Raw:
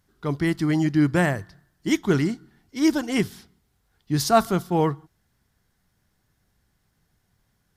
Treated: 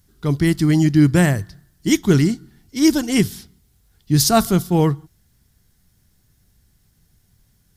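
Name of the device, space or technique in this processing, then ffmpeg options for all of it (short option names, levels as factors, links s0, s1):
smiley-face EQ: -af "lowshelf=f=140:g=6,equalizer=f=1000:t=o:w=2.5:g=-7,highshelf=f=5000:g=6.5,volume=2.11"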